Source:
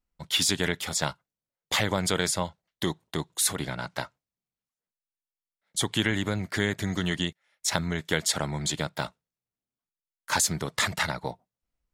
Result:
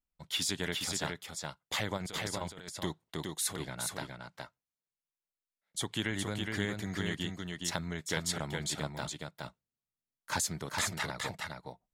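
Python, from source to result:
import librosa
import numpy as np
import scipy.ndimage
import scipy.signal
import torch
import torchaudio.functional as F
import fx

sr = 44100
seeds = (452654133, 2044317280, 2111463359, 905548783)

y = fx.over_compress(x, sr, threshold_db=-31.0, ratio=-0.5, at=(1.97, 2.41))
y = fx.low_shelf(y, sr, hz=350.0, db=6.5, at=(9.02, 10.41))
y = y + 10.0 ** (-4.0 / 20.0) * np.pad(y, (int(416 * sr / 1000.0), 0))[:len(y)]
y = y * librosa.db_to_amplitude(-8.5)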